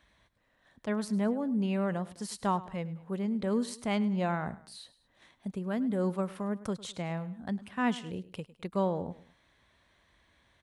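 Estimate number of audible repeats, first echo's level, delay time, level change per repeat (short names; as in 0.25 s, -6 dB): 2, -18.0 dB, 0.104 s, -6.5 dB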